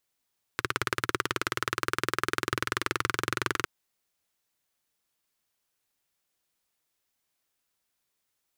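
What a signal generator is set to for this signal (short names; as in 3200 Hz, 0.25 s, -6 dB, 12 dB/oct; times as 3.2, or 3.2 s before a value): single-cylinder engine model, changing speed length 3.06 s, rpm 2100, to 2700, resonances 120/360/1300 Hz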